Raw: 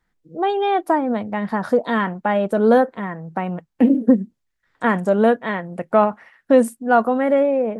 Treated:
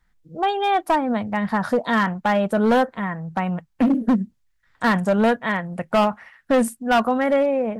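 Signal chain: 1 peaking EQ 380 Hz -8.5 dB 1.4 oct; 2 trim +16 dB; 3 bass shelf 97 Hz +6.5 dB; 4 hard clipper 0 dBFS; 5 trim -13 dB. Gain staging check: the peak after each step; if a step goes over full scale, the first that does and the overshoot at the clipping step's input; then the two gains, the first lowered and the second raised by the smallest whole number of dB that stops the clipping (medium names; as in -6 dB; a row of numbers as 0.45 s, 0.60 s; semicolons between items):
-7.0 dBFS, +9.0 dBFS, +9.0 dBFS, 0.0 dBFS, -13.0 dBFS; step 2, 9.0 dB; step 2 +7 dB, step 5 -4 dB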